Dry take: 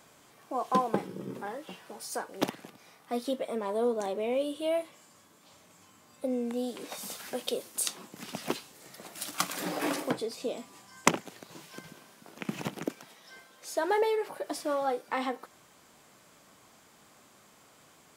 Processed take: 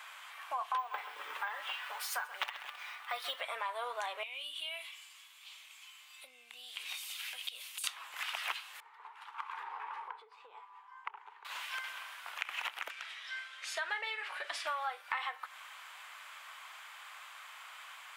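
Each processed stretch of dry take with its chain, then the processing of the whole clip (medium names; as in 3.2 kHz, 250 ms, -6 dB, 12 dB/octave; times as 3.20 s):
0.78–3.41 s: comb 6.8 ms, depth 32% + careless resampling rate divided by 2×, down filtered, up hold + bit-crushed delay 130 ms, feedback 35%, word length 8-bit, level -15 dB
4.23–7.84 s: high-order bell 820 Hz -14 dB 2.6 oct + compression 3:1, threshold -46 dBFS
8.80–11.45 s: two resonant band-passes 620 Hz, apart 1.1 oct + compression 10:1, threshold -43 dBFS
12.90–14.67 s: low-pass 7.2 kHz + peaking EQ 900 Hz -10 dB 0.97 oct + doubling 43 ms -13 dB
whole clip: high-pass 1 kHz 24 dB/octave; resonant high shelf 4 kHz -9.5 dB, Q 1.5; compression 4:1, threshold -48 dBFS; trim +12 dB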